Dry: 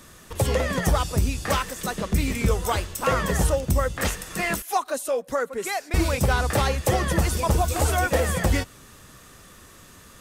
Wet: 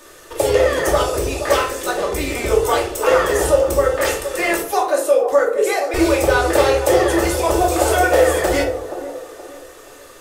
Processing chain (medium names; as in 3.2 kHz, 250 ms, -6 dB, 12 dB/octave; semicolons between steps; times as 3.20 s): resonant low shelf 280 Hz -11.5 dB, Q 3; on a send: feedback echo behind a band-pass 474 ms, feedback 35%, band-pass 530 Hz, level -9.5 dB; on the sum: simulated room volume 440 m³, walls furnished, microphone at 2.6 m; trim +2 dB